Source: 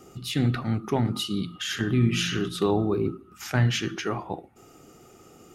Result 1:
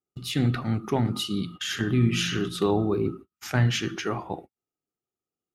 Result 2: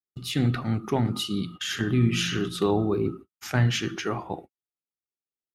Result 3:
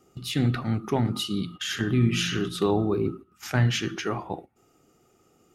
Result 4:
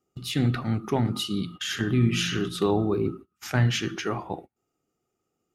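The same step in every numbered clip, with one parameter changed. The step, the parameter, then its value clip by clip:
gate, range: -43 dB, -58 dB, -11 dB, -28 dB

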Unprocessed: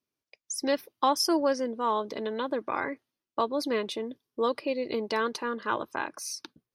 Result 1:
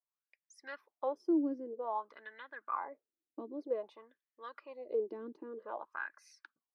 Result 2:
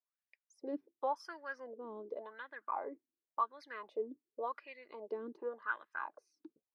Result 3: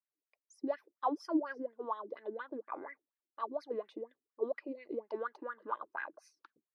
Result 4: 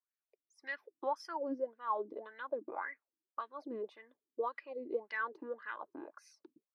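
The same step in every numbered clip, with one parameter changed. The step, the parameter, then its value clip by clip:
wah-wah, rate: 0.52 Hz, 0.9 Hz, 4.2 Hz, 1.8 Hz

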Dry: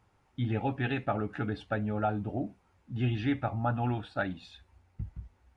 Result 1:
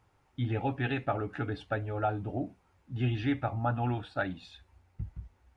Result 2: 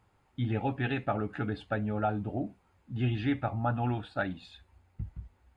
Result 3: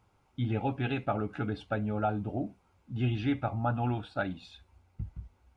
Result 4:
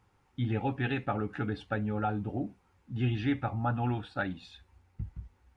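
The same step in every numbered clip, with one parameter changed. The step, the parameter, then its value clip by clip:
band-stop, frequency: 210 Hz, 5.7 kHz, 1.8 kHz, 640 Hz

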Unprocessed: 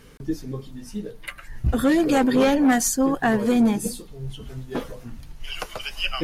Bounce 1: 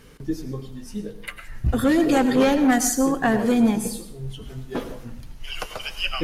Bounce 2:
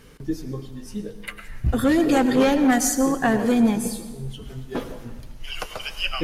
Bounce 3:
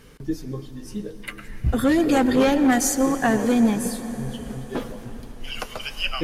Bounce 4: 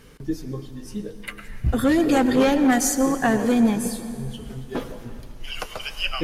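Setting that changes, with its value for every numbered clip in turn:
plate-style reverb, RT60: 0.56 s, 1.2 s, 5.3 s, 2.6 s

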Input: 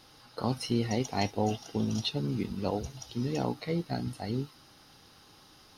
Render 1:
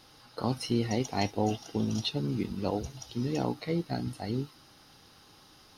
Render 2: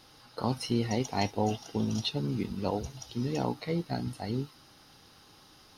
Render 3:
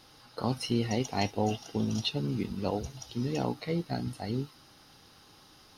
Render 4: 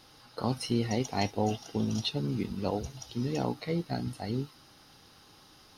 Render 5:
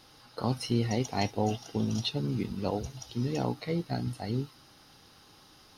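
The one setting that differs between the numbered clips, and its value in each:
dynamic bell, frequency: 320 Hz, 930 Hz, 2.8 kHz, 8.9 kHz, 120 Hz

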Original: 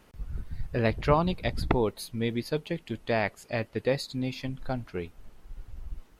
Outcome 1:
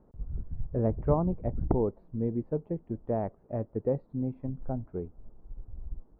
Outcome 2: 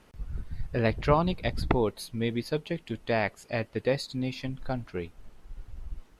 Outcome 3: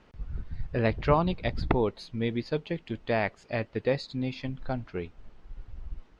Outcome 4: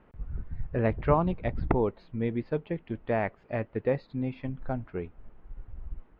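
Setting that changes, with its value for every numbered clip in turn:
Bessel low-pass, frequency: 610 Hz, 12 kHz, 4.2 kHz, 1.6 kHz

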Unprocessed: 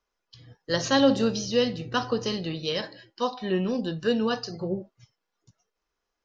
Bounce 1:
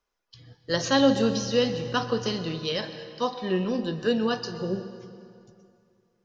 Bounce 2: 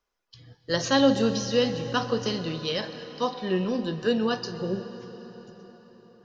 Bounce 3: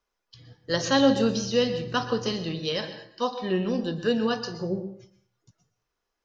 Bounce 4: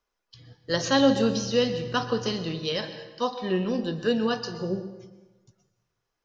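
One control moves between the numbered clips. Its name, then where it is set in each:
plate-style reverb, RT60: 2.5 s, 5.3 s, 0.57 s, 1.2 s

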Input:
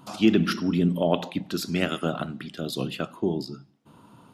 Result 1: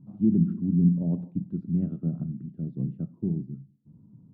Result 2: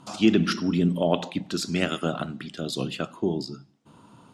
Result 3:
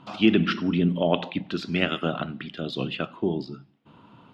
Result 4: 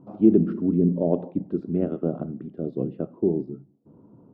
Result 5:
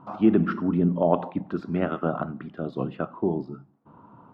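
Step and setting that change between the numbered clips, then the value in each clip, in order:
resonant low-pass, frequency: 170 Hz, 7.9 kHz, 3 kHz, 440 Hz, 1.1 kHz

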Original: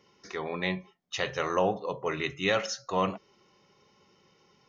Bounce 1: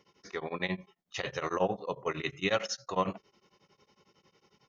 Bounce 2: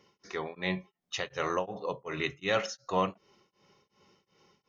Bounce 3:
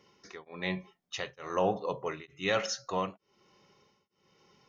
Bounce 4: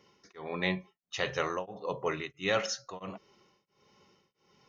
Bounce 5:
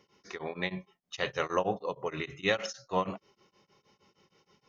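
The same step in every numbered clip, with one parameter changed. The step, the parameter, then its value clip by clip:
tremolo of two beating tones, nulls at: 11 Hz, 2.7 Hz, 1.1 Hz, 1.5 Hz, 6.4 Hz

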